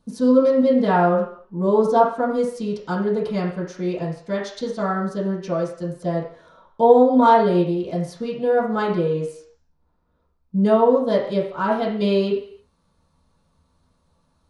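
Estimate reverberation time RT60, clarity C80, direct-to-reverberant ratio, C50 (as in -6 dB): 0.55 s, 9.0 dB, -11.0 dB, 5.5 dB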